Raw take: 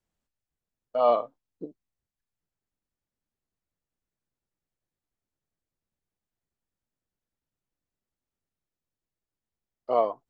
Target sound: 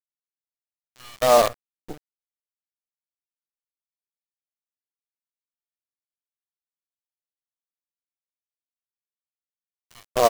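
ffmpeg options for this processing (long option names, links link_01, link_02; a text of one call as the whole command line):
ffmpeg -i in.wav -filter_complex "[0:a]acrossover=split=2100[link_01][link_02];[link_01]adelay=270[link_03];[link_03][link_02]amix=inputs=2:normalize=0,acrusher=bits=5:dc=4:mix=0:aa=0.000001,volume=5.5dB" out.wav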